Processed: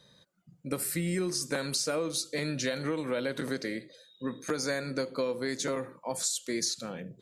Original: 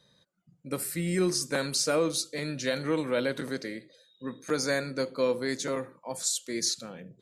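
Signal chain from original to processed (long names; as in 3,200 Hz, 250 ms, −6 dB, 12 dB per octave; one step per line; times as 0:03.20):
downward compressor, threshold −32 dBFS, peak gain reduction 10.5 dB
level +4 dB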